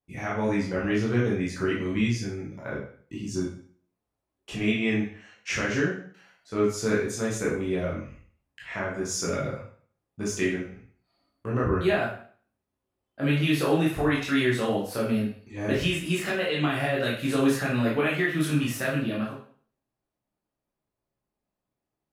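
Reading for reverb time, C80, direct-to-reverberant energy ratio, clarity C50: 0.50 s, 8.5 dB, -6.0 dB, 4.0 dB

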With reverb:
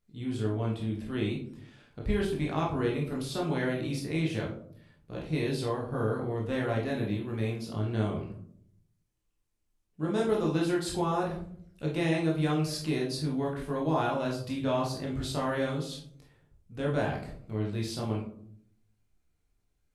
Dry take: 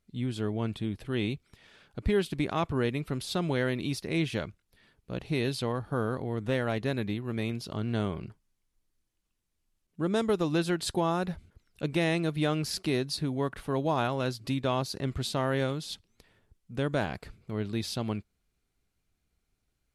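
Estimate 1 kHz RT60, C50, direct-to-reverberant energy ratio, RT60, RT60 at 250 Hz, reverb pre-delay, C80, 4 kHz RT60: 0.50 s, 5.5 dB, -3.5 dB, 0.65 s, 0.95 s, 19 ms, 10.5 dB, 0.30 s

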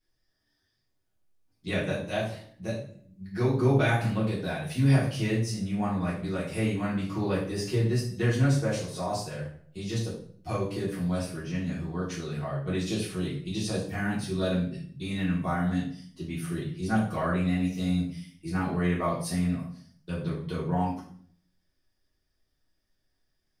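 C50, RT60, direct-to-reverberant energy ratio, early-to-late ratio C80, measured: 5.0 dB, 0.55 s, -8.5 dB, 9.0 dB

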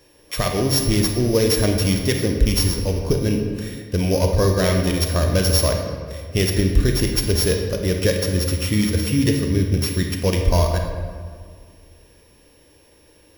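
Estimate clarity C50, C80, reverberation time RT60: 4.0 dB, 6.0 dB, 1.9 s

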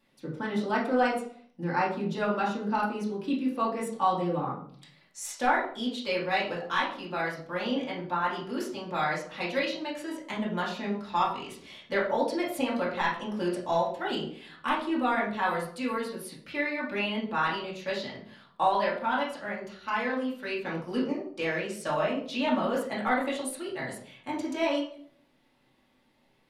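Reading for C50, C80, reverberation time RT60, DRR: 6.0 dB, 10.0 dB, 0.55 s, -6.5 dB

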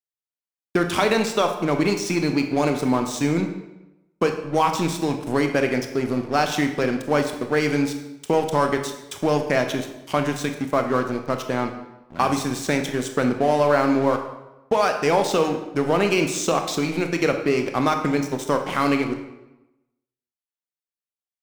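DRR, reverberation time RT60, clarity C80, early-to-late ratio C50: 5.0 dB, 0.95 s, 10.0 dB, 8.0 dB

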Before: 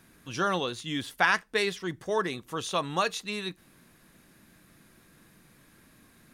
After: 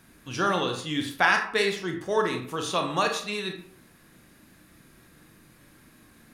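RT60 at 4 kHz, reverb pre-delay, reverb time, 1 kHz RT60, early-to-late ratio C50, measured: 0.35 s, 24 ms, 0.55 s, 0.55 s, 7.0 dB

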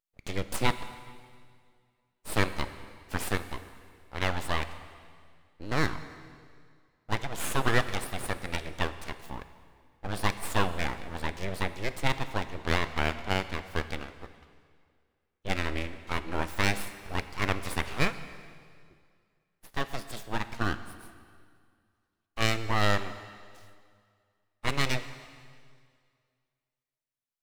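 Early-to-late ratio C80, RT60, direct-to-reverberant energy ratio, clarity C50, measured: 13.0 dB, 2.1 s, 11.5 dB, 12.5 dB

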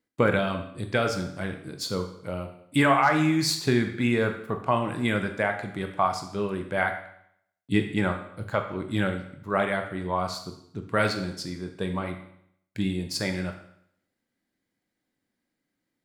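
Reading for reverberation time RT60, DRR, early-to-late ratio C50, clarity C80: 0.70 s, 5.5 dB, 9.0 dB, 11.5 dB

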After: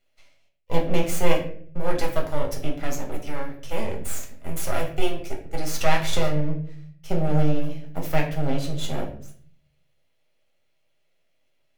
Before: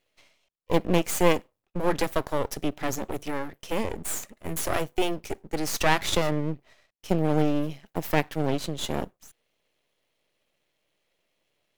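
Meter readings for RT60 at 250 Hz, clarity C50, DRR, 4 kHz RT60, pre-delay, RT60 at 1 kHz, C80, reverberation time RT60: 0.75 s, 8.5 dB, -0.5 dB, 0.40 s, 5 ms, 0.45 s, 12.5 dB, 0.55 s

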